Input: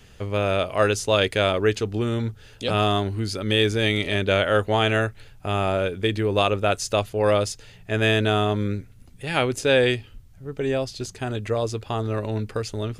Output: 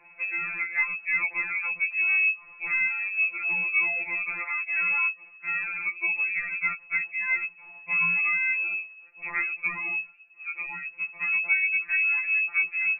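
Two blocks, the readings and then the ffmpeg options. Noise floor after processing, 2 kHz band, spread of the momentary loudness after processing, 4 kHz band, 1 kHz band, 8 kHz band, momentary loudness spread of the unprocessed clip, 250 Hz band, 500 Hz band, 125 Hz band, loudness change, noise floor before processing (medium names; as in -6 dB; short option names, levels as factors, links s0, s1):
-52 dBFS, +5.5 dB, 11 LU, under -40 dB, -13.0 dB, under -40 dB, 10 LU, under -25 dB, -33.0 dB, -30.5 dB, -2.0 dB, -49 dBFS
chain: -filter_complex "[0:a]acrossover=split=110|820[s0][s1][s2];[s2]acompressor=mode=upward:threshold=0.00355:ratio=2.5[s3];[s0][s1][s3]amix=inputs=3:normalize=0,lowpass=f=2300:t=q:w=0.5098,lowpass=f=2300:t=q:w=0.6013,lowpass=f=2300:t=q:w=0.9,lowpass=f=2300:t=q:w=2.563,afreqshift=-2700,acrossover=split=110|1500[s4][s5][s6];[s4]acompressor=threshold=0.00251:ratio=4[s7];[s5]acompressor=threshold=0.00794:ratio=4[s8];[s6]acompressor=threshold=0.0708:ratio=4[s9];[s7][s8][s9]amix=inputs=3:normalize=0,afftfilt=real='re*2.83*eq(mod(b,8),0)':imag='im*2.83*eq(mod(b,8),0)':win_size=2048:overlap=0.75"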